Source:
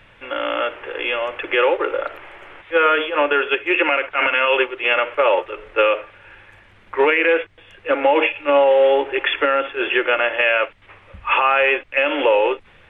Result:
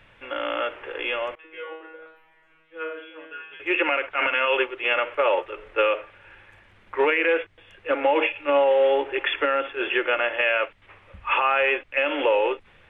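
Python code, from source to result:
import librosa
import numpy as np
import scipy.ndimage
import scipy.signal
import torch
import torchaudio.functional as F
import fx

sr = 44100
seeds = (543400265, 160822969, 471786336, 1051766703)

y = fx.comb_fb(x, sr, f0_hz=160.0, decay_s=0.64, harmonics='all', damping=0.0, mix_pct=100, at=(1.35, 3.6))
y = y * librosa.db_to_amplitude(-5.0)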